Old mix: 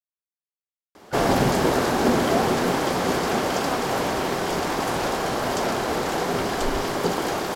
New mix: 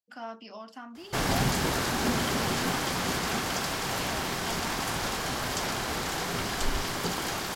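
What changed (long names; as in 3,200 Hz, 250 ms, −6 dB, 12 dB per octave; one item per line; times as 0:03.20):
speech: entry −1.00 s
master: add parametric band 470 Hz −12 dB 2.5 octaves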